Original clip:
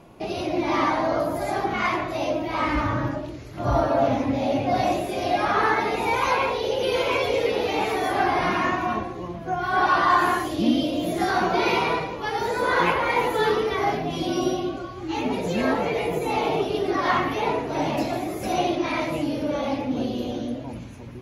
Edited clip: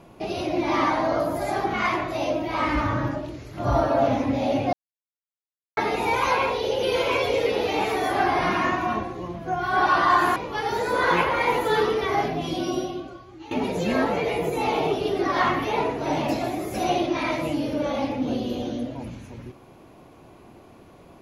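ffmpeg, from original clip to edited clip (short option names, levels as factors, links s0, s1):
-filter_complex "[0:a]asplit=5[s0][s1][s2][s3][s4];[s0]atrim=end=4.73,asetpts=PTS-STARTPTS,afade=t=out:st=4.726:d=0.004:c=hsin[s5];[s1]atrim=start=4.73:end=5.77,asetpts=PTS-STARTPTS,volume=0[s6];[s2]atrim=start=5.77:end=10.362,asetpts=PTS-STARTPTS,afade=t=in:d=0.004:c=hsin[s7];[s3]atrim=start=12.048:end=15.2,asetpts=PTS-STARTPTS,afade=t=out:st=2.012:d=1.14:silence=0.149624[s8];[s4]atrim=start=15.2,asetpts=PTS-STARTPTS,afade=t=in:d=0.004:c=hsin:silence=0.149624[s9];[s5][s6][s7]concat=n=3:v=0:a=1[s10];[s8][s9]concat=n=2:v=0:a=1[s11];[s10][s11]acrossfade=d=0.004:c1=hsin:c2=hsin"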